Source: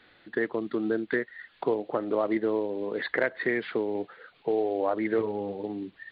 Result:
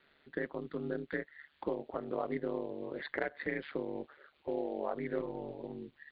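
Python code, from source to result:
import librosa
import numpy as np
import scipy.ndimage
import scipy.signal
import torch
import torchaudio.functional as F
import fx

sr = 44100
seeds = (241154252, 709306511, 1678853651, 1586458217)

y = x * np.sin(2.0 * np.pi * 73.0 * np.arange(len(x)) / sr)
y = y * 10.0 ** (-6.5 / 20.0)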